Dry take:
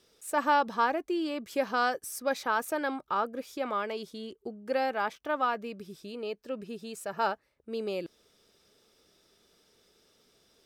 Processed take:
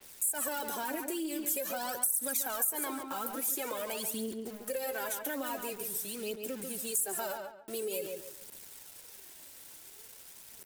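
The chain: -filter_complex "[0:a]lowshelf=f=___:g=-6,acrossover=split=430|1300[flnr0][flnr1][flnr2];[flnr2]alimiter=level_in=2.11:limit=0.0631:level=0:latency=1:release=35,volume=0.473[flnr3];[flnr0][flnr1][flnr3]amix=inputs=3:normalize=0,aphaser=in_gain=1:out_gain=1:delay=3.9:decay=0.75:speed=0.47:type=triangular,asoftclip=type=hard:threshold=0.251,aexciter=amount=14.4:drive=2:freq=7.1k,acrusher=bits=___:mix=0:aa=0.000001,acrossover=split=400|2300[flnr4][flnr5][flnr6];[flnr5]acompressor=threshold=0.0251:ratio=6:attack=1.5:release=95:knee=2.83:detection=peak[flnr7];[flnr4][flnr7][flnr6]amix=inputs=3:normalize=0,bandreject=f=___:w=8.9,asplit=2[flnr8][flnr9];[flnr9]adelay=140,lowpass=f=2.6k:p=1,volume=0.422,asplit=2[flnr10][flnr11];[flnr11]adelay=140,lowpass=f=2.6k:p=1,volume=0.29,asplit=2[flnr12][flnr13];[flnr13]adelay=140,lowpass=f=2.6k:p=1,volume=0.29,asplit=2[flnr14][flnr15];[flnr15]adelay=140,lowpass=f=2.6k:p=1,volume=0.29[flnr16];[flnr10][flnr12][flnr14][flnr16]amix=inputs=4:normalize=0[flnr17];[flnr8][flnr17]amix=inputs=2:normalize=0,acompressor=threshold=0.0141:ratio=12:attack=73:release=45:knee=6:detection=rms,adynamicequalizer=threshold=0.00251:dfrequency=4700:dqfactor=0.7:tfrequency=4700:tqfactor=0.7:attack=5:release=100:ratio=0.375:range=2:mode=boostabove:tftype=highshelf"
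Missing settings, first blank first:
150, 7, 1.2k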